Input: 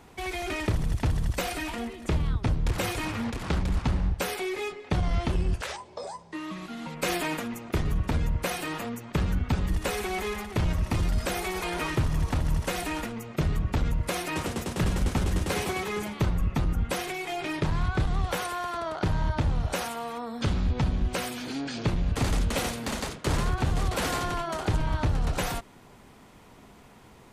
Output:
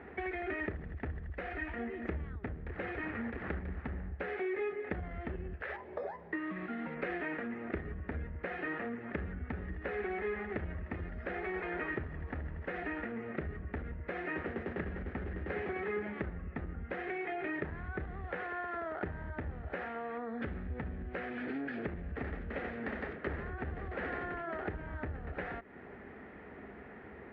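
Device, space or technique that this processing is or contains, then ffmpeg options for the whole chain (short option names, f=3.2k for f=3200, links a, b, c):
bass amplifier: -filter_complex "[0:a]asettb=1/sr,asplit=3[a][b][c];[a]atrim=end=1.054[d];[b]atrim=start=1.05:end=1.79,asetpts=PTS-STARTPTS,afade=t=in:d=0.004:c=qsin,afade=t=out:st=0.736:d=0.004:c=qsin,asubboost=boost=9.5:cutoff=130[e];[c]atrim=start=1.786[f];[d][e]acrossfade=d=0.004:c1=hsin:c2=qsin[g];[g][f]acrossfade=d=0.004:c1=qsin:c2=hsin,acompressor=threshold=-39dB:ratio=5,highpass=69,equalizer=f=70:t=q:w=4:g=5,equalizer=f=110:t=q:w=4:g=-9,equalizer=f=150:t=q:w=4:g=-6,equalizer=f=410:t=q:w=4:g=5,equalizer=f=1k:t=q:w=4:g=-9,equalizer=f=1.8k:t=q:w=4:g=9,lowpass=f=2.1k:w=0.5412,lowpass=f=2.1k:w=1.3066,volume=3dB"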